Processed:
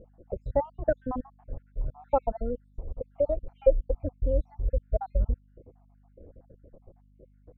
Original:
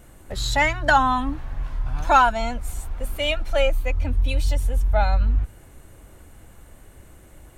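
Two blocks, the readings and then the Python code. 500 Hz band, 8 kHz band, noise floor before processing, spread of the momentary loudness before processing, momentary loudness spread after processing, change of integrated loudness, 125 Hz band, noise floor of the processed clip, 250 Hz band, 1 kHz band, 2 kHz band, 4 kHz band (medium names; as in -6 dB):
-1.0 dB, under -40 dB, -48 dBFS, 15 LU, 15 LU, -8.0 dB, -8.0 dB, -60 dBFS, -6.5 dB, -15.5 dB, under -25 dB, under -40 dB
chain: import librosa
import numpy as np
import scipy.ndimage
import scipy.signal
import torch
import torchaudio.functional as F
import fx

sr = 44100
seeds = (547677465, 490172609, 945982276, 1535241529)

y = fx.spec_dropout(x, sr, seeds[0], share_pct=65)
y = fx.lowpass_res(y, sr, hz=510.0, q=4.9)
y = fx.add_hum(y, sr, base_hz=50, snr_db=30)
y = y * 10.0 ** (-4.5 / 20.0)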